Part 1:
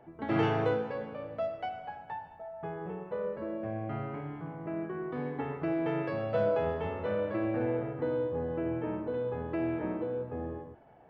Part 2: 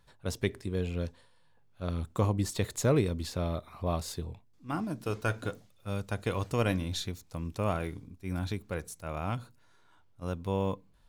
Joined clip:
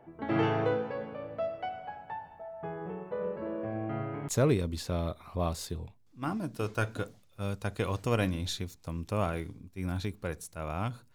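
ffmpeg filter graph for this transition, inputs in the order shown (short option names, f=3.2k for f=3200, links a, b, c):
-filter_complex "[0:a]asplit=3[a][b][c];[a]afade=t=out:st=3.2:d=0.02[d];[b]aecho=1:1:338:0.422,afade=t=in:st=3.2:d=0.02,afade=t=out:st=4.28:d=0.02[e];[c]afade=t=in:st=4.28:d=0.02[f];[d][e][f]amix=inputs=3:normalize=0,apad=whole_dur=11.14,atrim=end=11.14,atrim=end=4.282[g];[1:a]atrim=start=2.748:end=9.61[h];[g][h]acrossfade=d=0.004:c1=hsin:c2=hsin"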